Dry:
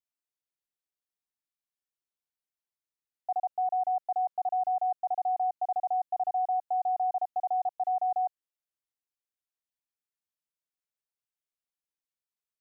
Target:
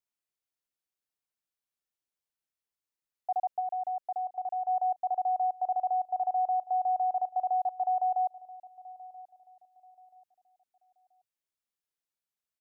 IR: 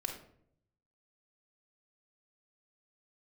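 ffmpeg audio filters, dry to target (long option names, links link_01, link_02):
-filter_complex "[0:a]asplit=3[link_01][link_02][link_03];[link_01]afade=type=out:start_time=3.59:duration=0.02[link_04];[link_02]acompressor=threshold=-33dB:ratio=2.5,afade=type=in:start_time=3.59:duration=0.02,afade=type=out:start_time=4.67:duration=0.02[link_05];[link_03]afade=type=in:start_time=4.67:duration=0.02[link_06];[link_04][link_05][link_06]amix=inputs=3:normalize=0,asplit=2[link_07][link_08];[link_08]adelay=981,lowpass=frequency=940:poles=1,volume=-18dB,asplit=2[link_09][link_10];[link_10]adelay=981,lowpass=frequency=940:poles=1,volume=0.4,asplit=2[link_11][link_12];[link_12]adelay=981,lowpass=frequency=940:poles=1,volume=0.4[link_13];[link_07][link_09][link_11][link_13]amix=inputs=4:normalize=0"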